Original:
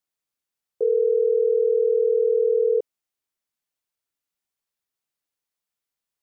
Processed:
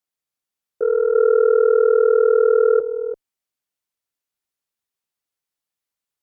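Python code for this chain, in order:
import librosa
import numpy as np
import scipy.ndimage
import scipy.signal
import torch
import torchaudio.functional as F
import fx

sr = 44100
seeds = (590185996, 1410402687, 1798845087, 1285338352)

y = x + 10.0 ** (-5.0 / 20.0) * np.pad(x, (int(336 * sr / 1000.0), 0))[:len(x)]
y = fx.cheby_harmonics(y, sr, harmonics=(3, 4), levels_db=(-16, -44), full_scale_db=-11.5)
y = F.gain(torch.from_numpy(y), 4.5).numpy()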